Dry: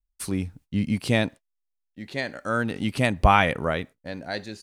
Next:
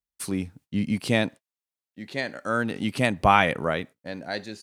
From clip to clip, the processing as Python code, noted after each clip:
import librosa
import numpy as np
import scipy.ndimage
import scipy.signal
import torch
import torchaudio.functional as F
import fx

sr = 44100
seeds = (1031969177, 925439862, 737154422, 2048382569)

y = scipy.signal.sosfilt(scipy.signal.butter(2, 120.0, 'highpass', fs=sr, output='sos'), x)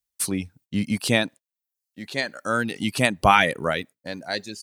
y = fx.dereverb_blind(x, sr, rt60_s=0.6)
y = fx.high_shelf(y, sr, hz=3400.0, db=9.0)
y = y * librosa.db_to_amplitude(1.5)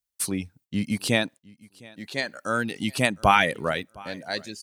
y = fx.echo_feedback(x, sr, ms=710, feedback_pct=19, wet_db=-24)
y = y * librosa.db_to_amplitude(-2.0)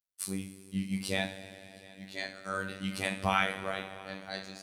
y = fx.rev_double_slope(x, sr, seeds[0], early_s=0.41, late_s=3.5, knee_db=-16, drr_db=1.0)
y = fx.robotise(y, sr, hz=96.0)
y = y * librosa.db_to_amplitude(-9.0)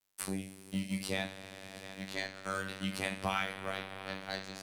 y = fx.law_mismatch(x, sr, coded='A')
y = fx.band_squash(y, sr, depth_pct=70)
y = y * librosa.db_to_amplitude(-1.5)